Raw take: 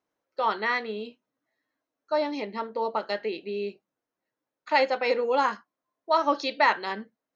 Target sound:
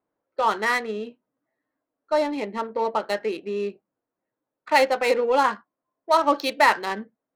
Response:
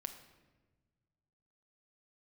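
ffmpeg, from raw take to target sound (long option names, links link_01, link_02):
-af "adynamicsmooth=sensitivity=6.5:basefreq=1700,volume=4dB"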